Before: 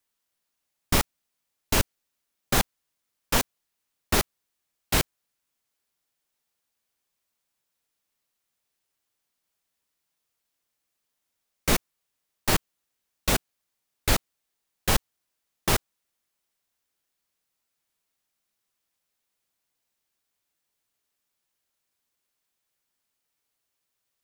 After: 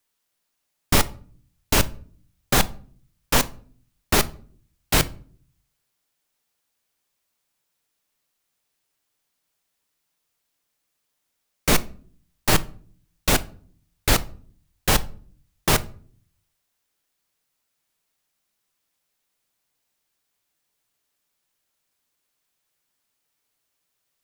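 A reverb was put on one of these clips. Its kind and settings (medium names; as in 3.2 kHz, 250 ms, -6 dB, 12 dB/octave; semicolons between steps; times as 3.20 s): simulated room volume 450 m³, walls furnished, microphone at 0.41 m; trim +4 dB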